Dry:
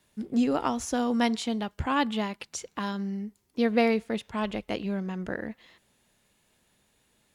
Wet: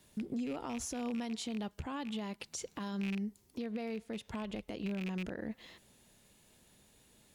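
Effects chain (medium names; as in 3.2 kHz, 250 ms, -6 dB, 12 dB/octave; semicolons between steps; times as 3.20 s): rattle on loud lows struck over -33 dBFS, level -24 dBFS; peaking EQ 1.5 kHz -5.5 dB 2.3 oct; compression 10:1, threshold -38 dBFS, peak gain reduction 18.5 dB; peak limiter -35.5 dBFS, peak gain reduction 8 dB; trim +5 dB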